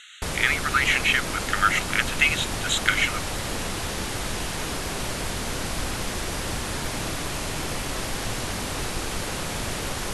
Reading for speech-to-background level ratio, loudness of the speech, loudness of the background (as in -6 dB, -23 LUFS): 6.0 dB, -23.0 LUFS, -29.0 LUFS